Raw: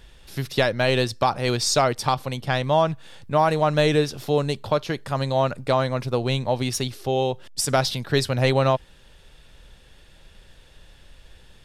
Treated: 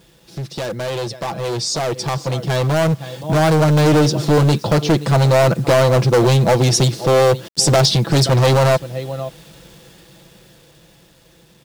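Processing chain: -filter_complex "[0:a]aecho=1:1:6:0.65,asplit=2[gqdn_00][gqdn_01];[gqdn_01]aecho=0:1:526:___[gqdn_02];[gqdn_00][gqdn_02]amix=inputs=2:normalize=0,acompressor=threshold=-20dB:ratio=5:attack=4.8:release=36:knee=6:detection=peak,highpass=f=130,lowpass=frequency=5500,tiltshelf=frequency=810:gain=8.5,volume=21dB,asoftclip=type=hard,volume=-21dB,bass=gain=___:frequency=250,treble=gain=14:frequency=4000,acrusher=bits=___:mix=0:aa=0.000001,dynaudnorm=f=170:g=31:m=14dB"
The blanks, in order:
0.0891, -2, 8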